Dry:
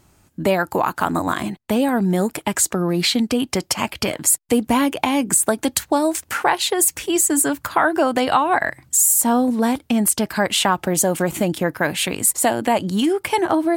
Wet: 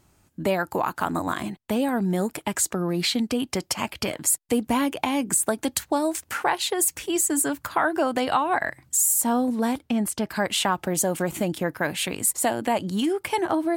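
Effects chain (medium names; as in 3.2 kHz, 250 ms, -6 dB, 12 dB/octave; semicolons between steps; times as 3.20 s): 9.82–10.31 s: treble shelf 5.4 kHz -8.5 dB; trim -5.5 dB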